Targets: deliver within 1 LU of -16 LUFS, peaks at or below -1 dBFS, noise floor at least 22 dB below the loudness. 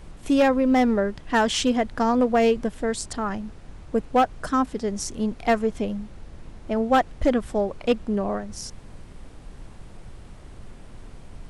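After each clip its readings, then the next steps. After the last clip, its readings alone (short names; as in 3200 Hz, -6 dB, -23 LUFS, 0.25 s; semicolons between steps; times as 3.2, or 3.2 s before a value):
clipped 0.4%; flat tops at -12.5 dBFS; noise floor -44 dBFS; noise floor target -46 dBFS; loudness -23.5 LUFS; peak -12.5 dBFS; loudness target -16.0 LUFS
-> clip repair -12.5 dBFS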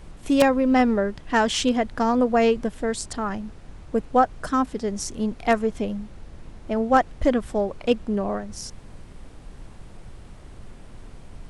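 clipped 0.0%; noise floor -44 dBFS; noise floor target -45 dBFS
-> noise print and reduce 6 dB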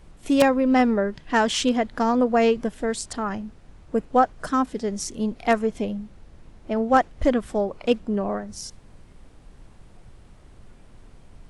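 noise floor -50 dBFS; loudness -23.0 LUFS; peak -3.5 dBFS; loudness target -16.0 LUFS
-> gain +7 dB; limiter -1 dBFS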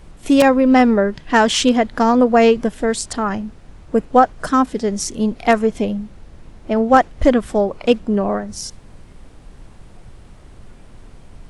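loudness -16.5 LUFS; peak -1.0 dBFS; noise floor -43 dBFS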